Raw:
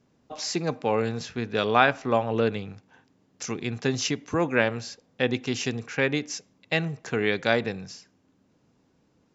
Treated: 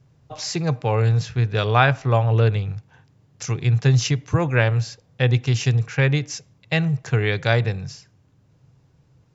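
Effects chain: resonant low shelf 170 Hz +9 dB, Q 3; trim +2.5 dB

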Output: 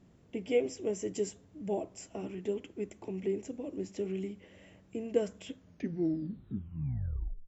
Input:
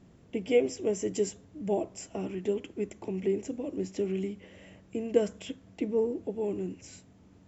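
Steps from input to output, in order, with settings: tape stop on the ending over 1.92 s; flange 1.2 Hz, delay 0.3 ms, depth 3.3 ms, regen -88%

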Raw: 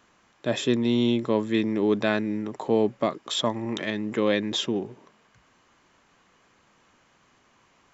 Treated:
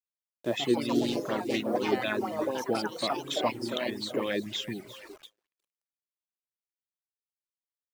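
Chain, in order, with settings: 0.88–1.76 s: self-modulated delay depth 0.15 ms; ever faster or slower copies 205 ms, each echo +3 st, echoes 3; two-band feedback delay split 340 Hz, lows 95 ms, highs 347 ms, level -14 dB; bit crusher 7-bit; band-stop 440 Hz, Q 12; gate with hold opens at -30 dBFS; reverb removal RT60 0.72 s; 4.46–4.86 s: graphic EQ 125/500/1000/2000 Hz +6/-5/-11/+8 dB; sweeping bell 4.1 Hz 340–3400 Hz +12 dB; trim -8.5 dB

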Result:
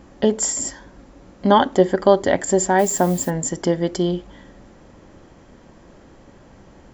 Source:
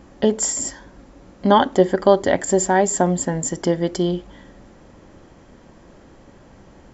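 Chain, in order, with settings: 2.78–3.29 s: added noise blue -39 dBFS

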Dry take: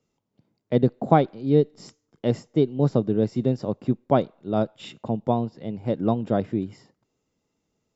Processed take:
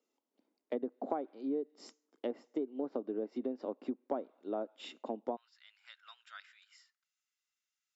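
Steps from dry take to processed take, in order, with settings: elliptic high-pass 260 Hz, stop band 80 dB, from 5.35 s 1.4 kHz; compression 5:1, threshold -27 dBFS, peak gain reduction 13.5 dB; low-pass that closes with the level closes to 1.4 kHz, closed at -26 dBFS; trim -6 dB

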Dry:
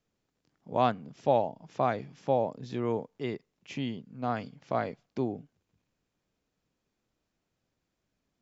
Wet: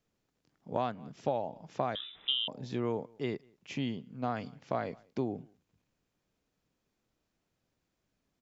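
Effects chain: echo from a far wall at 33 m, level -30 dB; compression 10:1, threshold -27 dBFS, peak gain reduction 9 dB; 1.95–2.48 s: frequency inversion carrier 3.7 kHz

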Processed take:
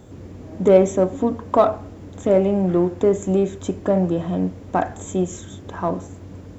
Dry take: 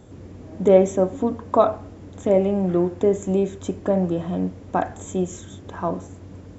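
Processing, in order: in parallel at -10 dB: overload inside the chain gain 17 dB; on the sum: word length cut 12-bit, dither none

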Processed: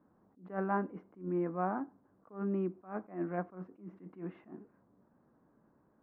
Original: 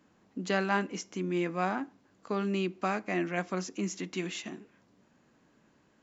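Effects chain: low-pass 1.3 kHz 24 dB/octave; attacks held to a fixed rise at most 180 dB/s; trim -2.5 dB

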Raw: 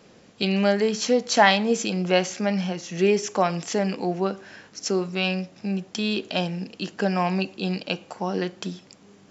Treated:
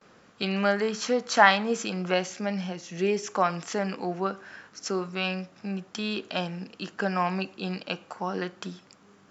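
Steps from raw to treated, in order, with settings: gate with hold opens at -46 dBFS; peaking EQ 1.3 kHz +11.5 dB 1 oct, from 2.14 s +2.5 dB, from 3.27 s +9.5 dB; trim -6 dB

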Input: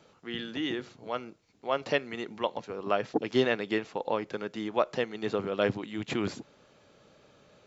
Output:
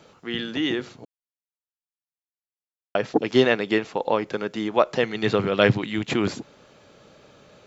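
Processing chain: 1.05–2.95 s: mute; 5.03–5.99 s: graphic EQ 125/2000/4000 Hz +8/+5/+4 dB; trim +7.5 dB

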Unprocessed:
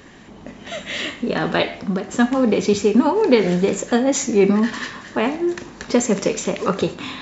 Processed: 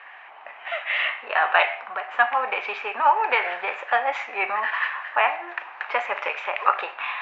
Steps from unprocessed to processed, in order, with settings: elliptic band-pass 740–2600 Hz, stop band 80 dB; trim +6 dB

